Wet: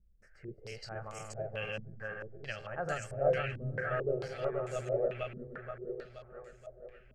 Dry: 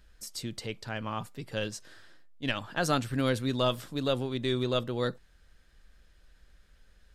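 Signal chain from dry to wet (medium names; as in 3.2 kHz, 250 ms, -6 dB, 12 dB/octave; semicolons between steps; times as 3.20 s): backward echo that repeats 238 ms, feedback 73%, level -0.5 dB; static phaser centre 1 kHz, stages 6; step-sequenced low-pass 4.5 Hz 240–7200 Hz; trim -8 dB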